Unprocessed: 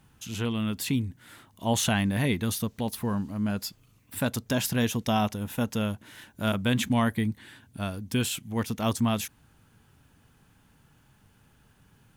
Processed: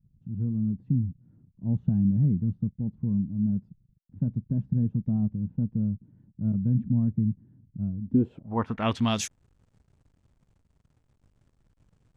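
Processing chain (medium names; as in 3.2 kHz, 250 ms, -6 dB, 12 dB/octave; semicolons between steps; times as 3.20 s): hysteresis with a dead band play -49 dBFS; low-pass sweep 170 Hz -> 8.1 kHz, 7.99–9.30 s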